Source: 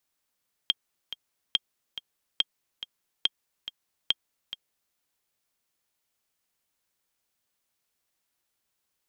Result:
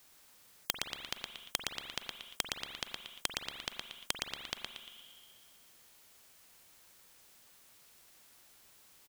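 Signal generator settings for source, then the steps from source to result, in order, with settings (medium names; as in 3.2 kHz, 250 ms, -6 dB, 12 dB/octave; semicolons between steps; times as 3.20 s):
metronome 141 bpm, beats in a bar 2, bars 5, 3.22 kHz, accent 13 dB -9 dBFS
on a send: feedback delay 116 ms, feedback 32%, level -8.5 dB; on the sum: spring tank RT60 1.8 s, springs 43 ms, chirp 45 ms, DRR 15 dB; spectrum-flattening compressor 4:1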